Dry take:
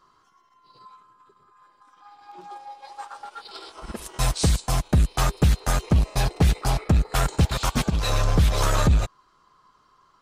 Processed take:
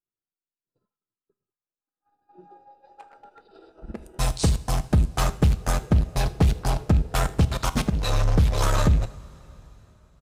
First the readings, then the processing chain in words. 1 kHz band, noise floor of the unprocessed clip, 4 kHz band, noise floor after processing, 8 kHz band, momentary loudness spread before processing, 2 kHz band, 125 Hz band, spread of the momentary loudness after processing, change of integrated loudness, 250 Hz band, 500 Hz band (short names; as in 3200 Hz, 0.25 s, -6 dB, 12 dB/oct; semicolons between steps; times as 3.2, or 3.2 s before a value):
-2.0 dB, -62 dBFS, -3.5 dB, under -85 dBFS, -3.0 dB, 18 LU, -2.5 dB, -0.5 dB, 7 LU, -1.0 dB, 0.0 dB, -0.5 dB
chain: Wiener smoothing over 41 samples; echo 79 ms -22.5 dB; two-slope reverb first 0.4 s, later 4.2 s, from -18 dB, DRR 12.5 dB; expander -52 dBFS